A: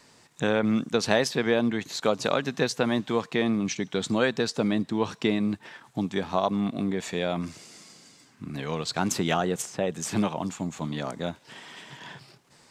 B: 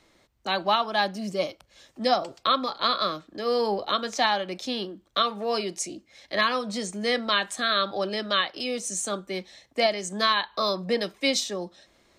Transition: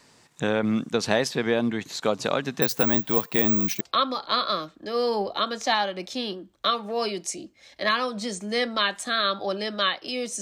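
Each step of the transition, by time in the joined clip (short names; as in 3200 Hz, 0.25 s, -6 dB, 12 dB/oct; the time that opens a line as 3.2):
A
2.62–3.81 careless resampling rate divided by 2×, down none, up zero stuff
3.81 switch to B from 2.33 s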